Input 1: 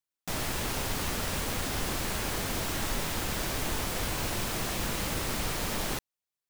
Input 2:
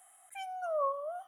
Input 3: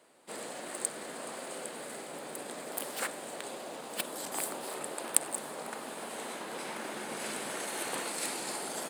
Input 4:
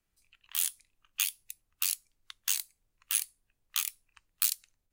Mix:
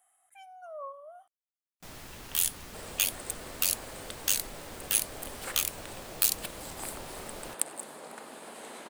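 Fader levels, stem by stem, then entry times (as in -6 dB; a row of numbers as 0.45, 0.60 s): -14.0, -9.5, -4.5, +2.5 dB; 1.55, 0.00, 2.45, 1.80 s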